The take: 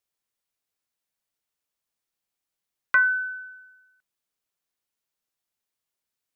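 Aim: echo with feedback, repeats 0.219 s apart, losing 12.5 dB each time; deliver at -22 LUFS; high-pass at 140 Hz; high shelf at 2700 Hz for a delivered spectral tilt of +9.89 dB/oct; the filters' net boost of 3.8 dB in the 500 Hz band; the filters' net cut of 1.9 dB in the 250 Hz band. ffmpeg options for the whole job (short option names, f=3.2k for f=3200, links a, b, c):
-af "highpass=140,equalizer=f=250:t=o:g=-4,equalizer=f=500:t=o:g=5.5,highshelf=f=2.7k:g=-3.5,aecho=1:1:219|438|657:0.237|0.0569|0.0137,volume=1.5dB"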